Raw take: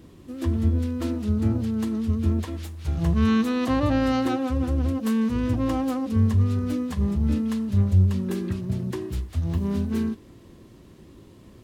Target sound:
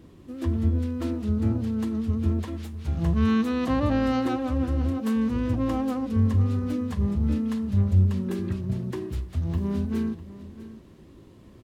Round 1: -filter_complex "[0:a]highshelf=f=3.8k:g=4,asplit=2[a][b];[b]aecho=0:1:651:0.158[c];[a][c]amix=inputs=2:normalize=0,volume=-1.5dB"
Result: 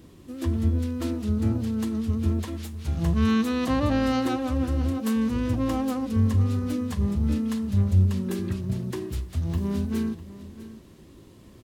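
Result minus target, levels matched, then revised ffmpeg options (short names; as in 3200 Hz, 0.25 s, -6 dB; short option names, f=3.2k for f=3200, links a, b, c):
8000 Hz band +7.0 dB
-filter_complex "[0:a]highshelf=f=3.8k:g=-5,asplit=2[a][b];[b]aecho=0:1:651:0.158[c];[a][c]amix=inputs=2:normalize=0,volume=-1.5dB"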